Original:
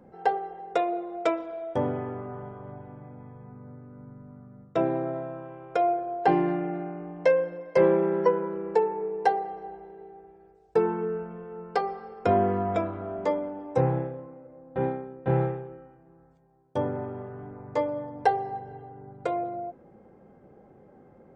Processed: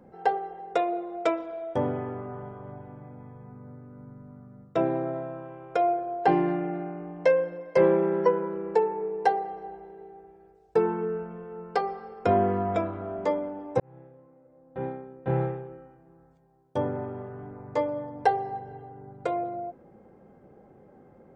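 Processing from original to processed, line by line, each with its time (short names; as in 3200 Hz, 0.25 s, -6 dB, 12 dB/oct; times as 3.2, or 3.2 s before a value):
13.8–15.77 fade in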